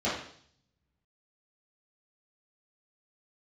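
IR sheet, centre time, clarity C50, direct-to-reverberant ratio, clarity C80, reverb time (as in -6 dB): 45 ms, 3.0 dB, -12.0 dB, 7.5 dB, 0.60 s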